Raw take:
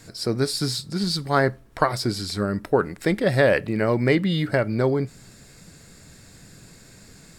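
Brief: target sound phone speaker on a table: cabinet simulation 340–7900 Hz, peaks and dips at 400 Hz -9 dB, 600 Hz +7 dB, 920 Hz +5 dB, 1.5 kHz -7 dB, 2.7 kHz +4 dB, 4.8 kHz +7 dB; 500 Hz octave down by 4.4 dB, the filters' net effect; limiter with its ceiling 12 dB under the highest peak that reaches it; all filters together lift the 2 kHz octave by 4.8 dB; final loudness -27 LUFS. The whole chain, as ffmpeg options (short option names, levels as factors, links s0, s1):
-af "equalizer=f=500:t=o:g=-8,equalizer=f=2000:t=o:g=8.5,alimiter=limit=0.168:level=0:latency=1,highpass=f=340:w=0.5412,highpass=f=340:w=1.3066,equalizer=f=400:t=q:w=4:g=-9,equalizer=f=600:t=q:w=4:g=7,equalizer=f=920:t=q:w=4:g=5,equalizer=f=1500:t=q:w=4:g=-7,equalizer=f=2700:t=q:w=4:g=4,equalizer=f=4800:t=q:w=4:g=7,lowpass=f=7900:w=0.5412,lowpass=f=7900:w=1.3066,volume=0.944"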